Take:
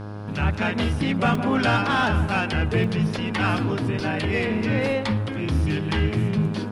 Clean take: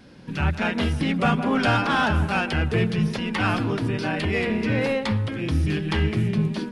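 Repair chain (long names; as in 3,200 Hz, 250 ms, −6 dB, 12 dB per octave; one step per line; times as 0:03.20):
hum removal 103.8 Hz, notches 16
repair the gap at 0:01.35/0:02.84/0:04.00, 2.8 ms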